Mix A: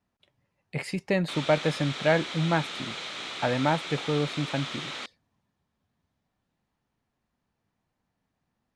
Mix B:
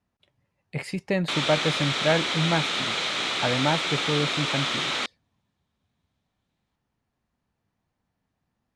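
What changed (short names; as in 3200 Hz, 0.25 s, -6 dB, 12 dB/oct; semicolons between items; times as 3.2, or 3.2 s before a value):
speech: add bell 74 Hz +3.5 dB 1.7 oct; background +9.5 dB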